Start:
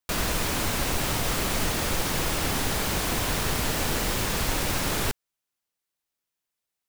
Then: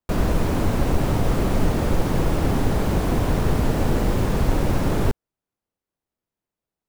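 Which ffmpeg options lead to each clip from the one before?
-af "tiltshelf=f=1.2k:g=10"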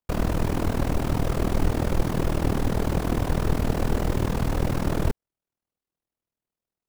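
-af "tremolo=f=40:d=0.857"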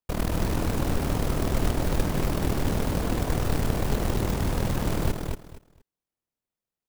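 -af "aecho=1:1:235|470|705:0.562|0.112|0.0225,acrusher=bits=3:mode=log:mix=0:aa=0.000001,volume=-3dB"

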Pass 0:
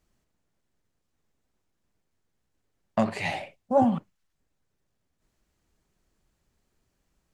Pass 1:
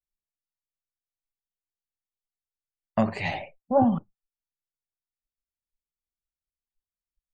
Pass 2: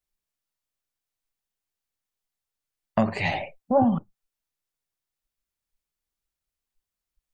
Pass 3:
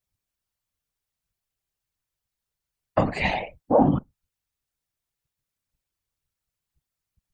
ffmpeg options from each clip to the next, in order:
-af "afftdn=nr=35:nf=-46,lowshelf=f=78:g=12"
-af "acompressor=threshold=-35dB:ratio=1.5,volume=7dB"
-af "afftfilt=real='hypot(re,im)*cos(2*PI*random(0))':imag='hypot(re,im)*sin(2*PI*random(1))':win_size=512:overlap=0.75,volume=7.5dB"

